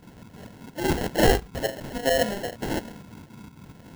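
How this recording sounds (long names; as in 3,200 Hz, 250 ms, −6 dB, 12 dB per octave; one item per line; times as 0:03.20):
phaser sweep stages 8, 1.9 Hz, lowest notch 780–2,800 Hz
aliases and images of a low sample rate 1,200 Hz, jitter 0%
tremolo saw up 4.3 Hz, depth 60%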